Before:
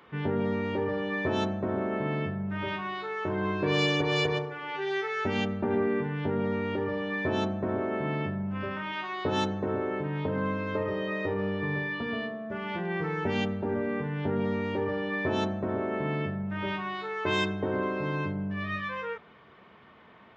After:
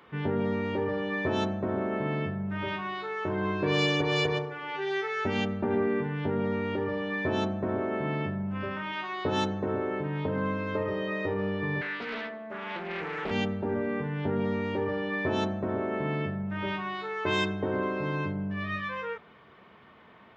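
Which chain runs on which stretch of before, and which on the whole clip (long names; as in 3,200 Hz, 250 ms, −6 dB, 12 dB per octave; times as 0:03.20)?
0:11.81–0:13.31: high-pass filter 170 Hz 24 dB per octave + low-shelf EQ 340 Hz −8.5 dB + highs frequency-modulated by the lows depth 0.53 ms
whole clip: no processing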